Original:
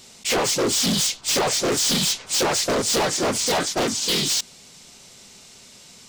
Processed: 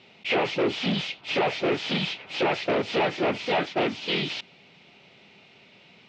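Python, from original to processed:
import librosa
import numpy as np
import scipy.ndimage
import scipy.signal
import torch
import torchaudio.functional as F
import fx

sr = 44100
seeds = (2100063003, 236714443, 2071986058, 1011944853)

y = fx.cabinet(x, sr, low_hz=140.0, low_slope=12, high_hz=3000.0, hz=(240.0, 500.0, 1100.0, 1600.0, 2500.0), db=(-5, -3, -7, -5, 4))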